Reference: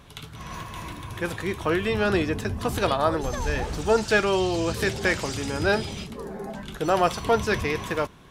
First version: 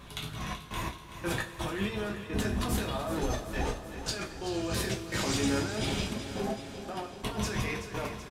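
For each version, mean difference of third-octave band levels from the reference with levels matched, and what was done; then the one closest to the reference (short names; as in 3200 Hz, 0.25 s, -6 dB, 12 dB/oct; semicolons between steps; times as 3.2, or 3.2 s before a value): 7.0 dB: negative-ratio compressor -30 dBFS, ratio -1; step gate "xxx.x..x.xxx.xxx" 85 bpm -60 dB; on a send: feedback echo 0.38 s, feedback 60%, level -11 dB; on the sum: two-slope reverb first 0.27 s, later 4.4 s, from -21 dB, DRR -0.5 dB; gain -5 dB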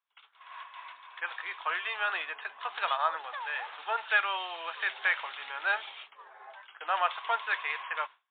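18.0 dB: expander -31 dBFS; HPF 910 Hz 24 dB/oct; high shelf 2300 Hz -3.5 dB; MP3 40 kbps 8000 Hz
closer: first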